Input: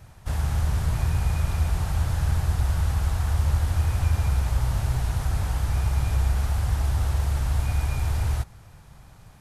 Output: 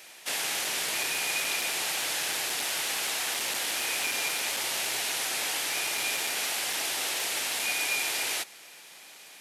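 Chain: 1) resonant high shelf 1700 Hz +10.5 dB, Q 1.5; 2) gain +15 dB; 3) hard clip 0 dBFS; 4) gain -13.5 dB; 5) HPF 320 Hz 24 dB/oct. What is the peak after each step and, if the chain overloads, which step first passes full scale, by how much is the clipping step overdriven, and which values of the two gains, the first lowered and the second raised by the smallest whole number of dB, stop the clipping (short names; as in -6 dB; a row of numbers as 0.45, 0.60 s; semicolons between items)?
-10.0, +5.0, 0.0, -13.5, -16.5 dBFS; step 2, 5.0 dB; step 2 +10 dB, step 4 -8.5 dB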